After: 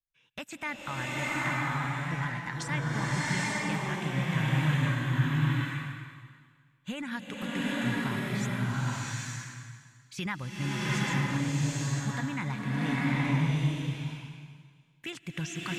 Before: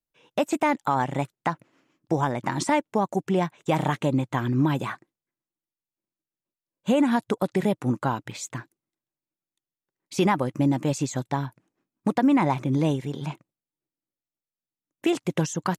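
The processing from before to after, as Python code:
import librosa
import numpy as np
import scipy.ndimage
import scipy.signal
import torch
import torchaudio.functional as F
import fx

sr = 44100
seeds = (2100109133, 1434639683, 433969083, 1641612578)

y = fx.curve_eq(x, sr, hz=(100.0, 350.0, 730.0, 1700.0, 8300.0), db=(0, -19, -20, -2, -8))
y = fx.rev_bloom(y, sr, seeds[0], attack_ms=860, drr_db=-7.5)
y = y * librosa.db_to_amplitude(-2.0)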